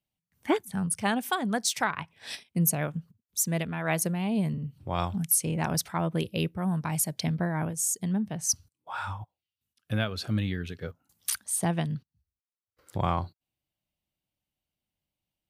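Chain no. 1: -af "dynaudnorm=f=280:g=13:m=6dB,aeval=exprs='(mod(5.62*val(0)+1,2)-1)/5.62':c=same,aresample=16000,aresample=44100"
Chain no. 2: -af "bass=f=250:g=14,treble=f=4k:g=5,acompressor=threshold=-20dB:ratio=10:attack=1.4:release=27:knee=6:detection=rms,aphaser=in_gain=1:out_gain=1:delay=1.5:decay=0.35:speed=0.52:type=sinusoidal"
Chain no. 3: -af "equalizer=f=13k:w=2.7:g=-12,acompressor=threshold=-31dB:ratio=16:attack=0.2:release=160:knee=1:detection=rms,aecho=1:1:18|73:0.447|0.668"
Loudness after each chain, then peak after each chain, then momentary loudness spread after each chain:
-26.0, -24.5, -36.5 LUFS; -11.5, -12.5, -23.0 dBFS; 11, 10, 9 LU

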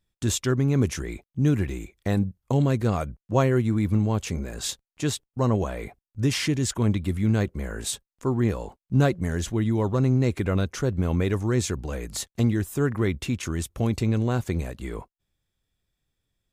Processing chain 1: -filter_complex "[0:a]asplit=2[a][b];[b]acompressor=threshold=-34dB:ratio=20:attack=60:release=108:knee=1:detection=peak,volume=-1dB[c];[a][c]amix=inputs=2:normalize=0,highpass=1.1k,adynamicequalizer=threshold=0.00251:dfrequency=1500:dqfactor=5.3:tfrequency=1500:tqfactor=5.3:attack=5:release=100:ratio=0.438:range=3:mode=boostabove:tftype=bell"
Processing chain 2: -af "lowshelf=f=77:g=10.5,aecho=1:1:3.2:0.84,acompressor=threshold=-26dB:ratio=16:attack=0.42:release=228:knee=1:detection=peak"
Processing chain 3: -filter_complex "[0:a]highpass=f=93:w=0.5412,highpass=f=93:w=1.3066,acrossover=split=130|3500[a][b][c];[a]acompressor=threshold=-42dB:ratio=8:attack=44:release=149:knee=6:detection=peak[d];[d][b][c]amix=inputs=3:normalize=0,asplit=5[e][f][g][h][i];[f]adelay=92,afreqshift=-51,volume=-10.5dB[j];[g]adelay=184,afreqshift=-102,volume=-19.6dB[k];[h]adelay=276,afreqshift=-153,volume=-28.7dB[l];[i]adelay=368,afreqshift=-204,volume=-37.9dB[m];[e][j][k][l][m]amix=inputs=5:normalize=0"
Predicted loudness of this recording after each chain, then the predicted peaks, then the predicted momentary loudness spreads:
-32.0, -33.5, -27.0 LUFS; -12.0, -22.0, -8.0 dBFS; 13, 4, 8 LU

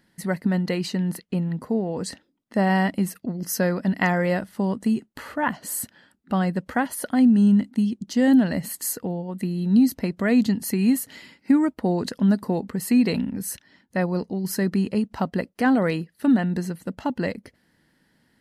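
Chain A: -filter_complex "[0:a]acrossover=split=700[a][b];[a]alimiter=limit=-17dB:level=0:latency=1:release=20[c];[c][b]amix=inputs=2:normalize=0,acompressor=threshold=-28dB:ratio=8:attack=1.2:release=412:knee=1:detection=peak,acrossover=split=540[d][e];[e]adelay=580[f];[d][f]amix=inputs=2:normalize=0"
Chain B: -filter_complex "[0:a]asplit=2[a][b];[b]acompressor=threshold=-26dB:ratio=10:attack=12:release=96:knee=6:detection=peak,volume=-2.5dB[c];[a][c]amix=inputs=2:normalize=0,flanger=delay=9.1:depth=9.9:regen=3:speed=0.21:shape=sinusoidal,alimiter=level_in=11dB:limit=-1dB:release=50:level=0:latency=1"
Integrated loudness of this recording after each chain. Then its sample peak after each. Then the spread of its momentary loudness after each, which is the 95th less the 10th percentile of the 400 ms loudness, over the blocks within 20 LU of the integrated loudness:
-35.5, -13.5 LUFS; -19.5, -1.0 dBFS; 9, 9 LU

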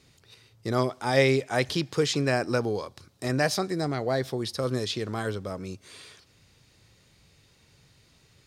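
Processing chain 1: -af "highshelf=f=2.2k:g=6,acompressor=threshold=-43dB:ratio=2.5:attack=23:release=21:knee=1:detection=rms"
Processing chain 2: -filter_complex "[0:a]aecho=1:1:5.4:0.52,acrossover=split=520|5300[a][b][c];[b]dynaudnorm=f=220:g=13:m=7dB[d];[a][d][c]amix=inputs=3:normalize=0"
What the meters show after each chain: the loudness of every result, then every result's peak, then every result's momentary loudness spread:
-37.5, -23.5 LUFS; -19.5, -5.5 dBFS; 21, 16 LU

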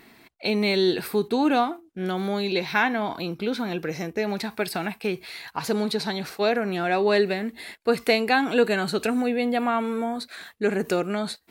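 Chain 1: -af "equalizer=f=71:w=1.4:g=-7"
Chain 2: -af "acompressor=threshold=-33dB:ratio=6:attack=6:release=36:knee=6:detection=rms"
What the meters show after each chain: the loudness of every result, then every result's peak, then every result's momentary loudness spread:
-25.5, -35.5 LUFS; -6.5, -21.5 dBFS; 9, 4 LU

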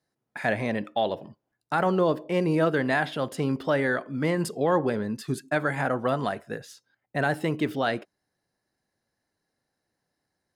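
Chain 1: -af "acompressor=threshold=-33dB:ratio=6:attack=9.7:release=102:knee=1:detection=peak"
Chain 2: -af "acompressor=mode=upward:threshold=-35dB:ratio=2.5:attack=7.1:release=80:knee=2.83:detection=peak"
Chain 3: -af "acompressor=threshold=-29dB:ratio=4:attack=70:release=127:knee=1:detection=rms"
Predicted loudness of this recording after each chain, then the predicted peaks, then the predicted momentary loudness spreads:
-36.0, -27.0, -31.0 LUFS; -19.0, -12.0, -12.5 dBFS; 7, 12, 7 LU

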